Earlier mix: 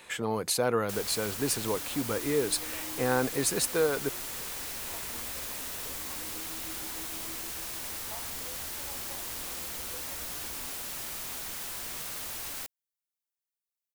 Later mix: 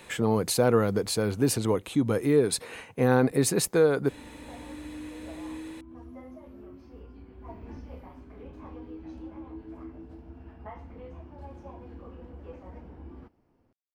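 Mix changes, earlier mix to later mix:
first sound: muted; second sound: entry +2.55 s; master: add low shelf 480 Hz +10.5 dB

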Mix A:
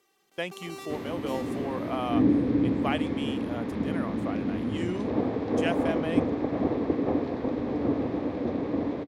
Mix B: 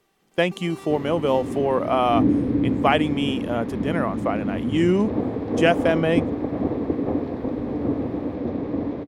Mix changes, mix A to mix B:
speech +11.5 dB; master: add tilt -1.5 dB/oct

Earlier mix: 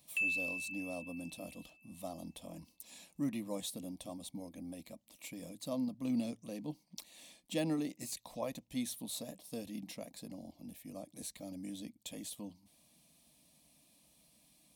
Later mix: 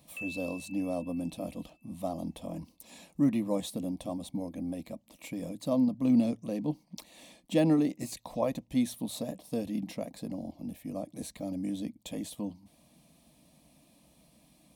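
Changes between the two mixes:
speech +10.5 dB; master: add high shelf 2000 Hz -11 dB

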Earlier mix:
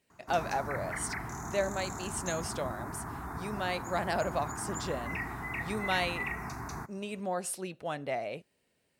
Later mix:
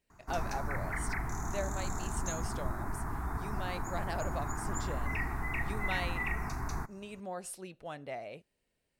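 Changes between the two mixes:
speech -7.0 dB; master: remove HPF 96 Hz 12 dB/oct

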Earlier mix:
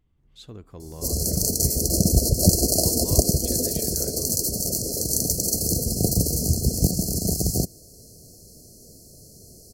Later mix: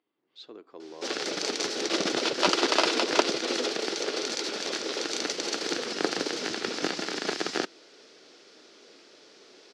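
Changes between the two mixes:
background: remove brick-wall FIR band-stop 750–4100 Hz; master: add elliptic band-pass 320–4900 Hz, stop band 80 dB

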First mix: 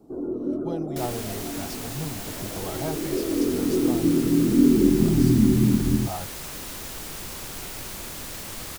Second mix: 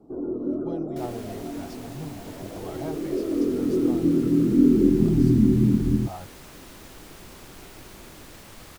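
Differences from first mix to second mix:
speech -4.5 dB; second sound -6.5 dB; master: add high shelf 4300 Hz -8 dB

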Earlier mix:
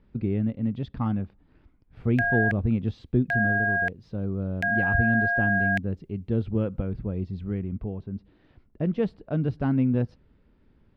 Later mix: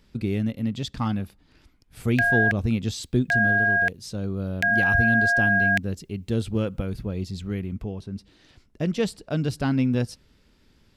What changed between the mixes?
speech: remove air absorption 300 m; master: add high shelf 2200 Hz +12 dB

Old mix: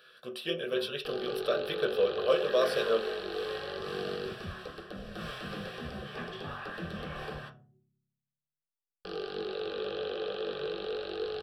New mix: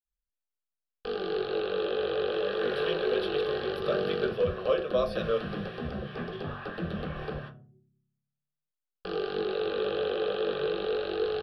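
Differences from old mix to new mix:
speech: entry +2.40 s; first sound +6.0 dB; master: add running mean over 6 samples

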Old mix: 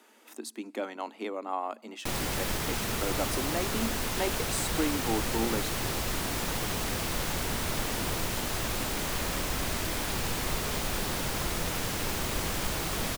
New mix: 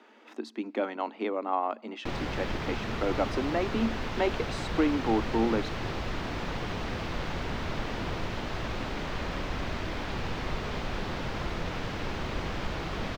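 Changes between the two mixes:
speech +5.0 dB; master: add air absorption 220 m

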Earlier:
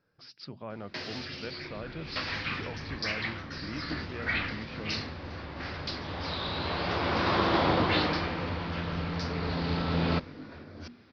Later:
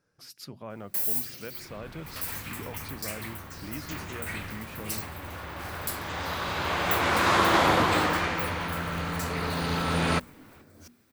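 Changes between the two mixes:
first sound -8.5 dB; second sound: add bell 1700 Hz +7.5 dB 2.5 oct; master: remove steep low-pass 5200 Hz 72 dB/oct

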